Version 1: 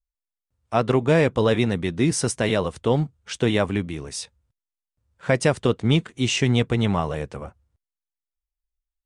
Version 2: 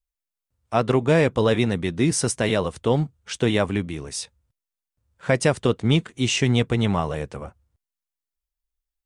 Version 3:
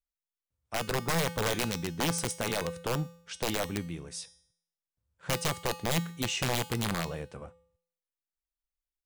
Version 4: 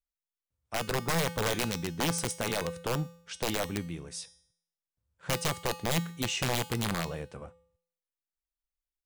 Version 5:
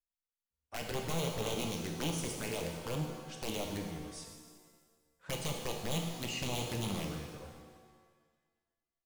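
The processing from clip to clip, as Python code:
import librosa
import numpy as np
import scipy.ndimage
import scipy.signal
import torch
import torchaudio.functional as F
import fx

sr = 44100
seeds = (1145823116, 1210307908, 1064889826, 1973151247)

y1 = fx.high_shelf(x, sr, hz=8700.0, db=4.0)
y2 = (np.mod(10.0 ** (12.5 / 20.0) * y1 + 1.0, 2.0) - 1.0) / 10.0 ** (12.5 / 20.0)
y2 = fx.comb_fb(y2, sr, f0_hz=170.0, decay_s=0.62, harmonics='odd', damping=0.0, mix_pct=70)
y3 = y2
y4 = fx.env_flanger(y3, sr, rest_ms=4.3, full_db=-27.0)
y4 = fx.rev_shimmer(y4, sr, seeds[0], rt60_s=1.5, semitones=7, shimmer_db=-8, drr_db=2.0)
y4 = y4 * librosa.db_to_amplitude(-6.0)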